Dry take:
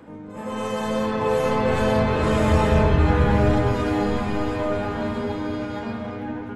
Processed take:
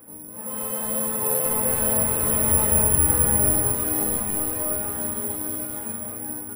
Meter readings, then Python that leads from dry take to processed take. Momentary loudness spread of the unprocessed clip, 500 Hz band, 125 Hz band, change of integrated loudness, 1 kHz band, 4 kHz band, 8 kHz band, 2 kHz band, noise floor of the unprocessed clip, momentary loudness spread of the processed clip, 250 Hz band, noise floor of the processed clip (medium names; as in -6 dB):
12 LU, -8.0 dB, -8.0 dB, +2.0 dB, -8.0 dB, -8.5 dB, +24.5 dB, -8.0 dB, -37 dBFS, 13 LU, -8.0 dB, -39 dBFS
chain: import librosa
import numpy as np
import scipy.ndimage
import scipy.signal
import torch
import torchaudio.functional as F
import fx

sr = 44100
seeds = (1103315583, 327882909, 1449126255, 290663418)

y = scipy.signal.savgol_filter(x, 15, 4, mode='constant')
y = (np.kron(y[::4], np.eye(4)[0]) * 4)[:len(y)]
y = y * librosa.db_to_amplitude(-8.0)